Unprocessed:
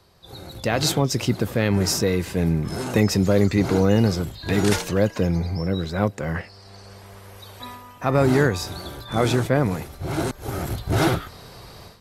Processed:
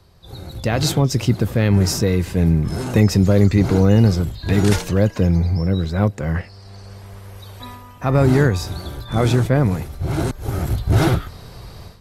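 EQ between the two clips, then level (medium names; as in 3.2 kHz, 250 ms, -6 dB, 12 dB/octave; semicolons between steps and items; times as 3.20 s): bass shelf 150 Hz +11.5 dB; 0.0 dB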